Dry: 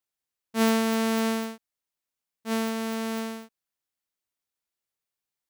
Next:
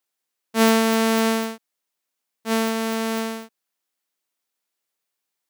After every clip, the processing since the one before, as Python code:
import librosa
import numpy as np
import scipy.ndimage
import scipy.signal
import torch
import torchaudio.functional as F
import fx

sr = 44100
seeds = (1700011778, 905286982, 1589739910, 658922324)

y = scipy.signal.sosfilt(scipy.signal.butter(2, 210.0, 'highpass', fs=sr, output='sos'), x)
y = y * 10.0 ** (7.0 / 20.0)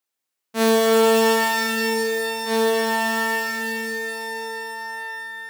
y = fx.rev_shimmer(x, sr, seeds[0], rt60_s=3.7, semitones=12, shimmer_db=-2, drr_db=-0.5)
y = y * 10.0 ** (-3.0 / 20.0)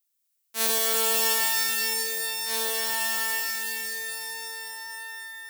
y = fx.tilt_eq(x, sr, slope=5.0)
y = y * 10.0 ** (-11.0 / 20.0)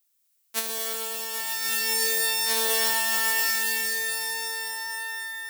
y = fx.over_compress(x, sr, threshold_db=-28.0, ratio=-0.5)
y = y * 10.0 ** (3.0 / 20.0)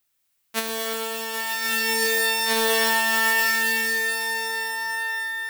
y = fx.bass_treble(x, sr, bass_db=7, treble_db=-9)
y = y * 10.0 ** (7.0 / 20.0)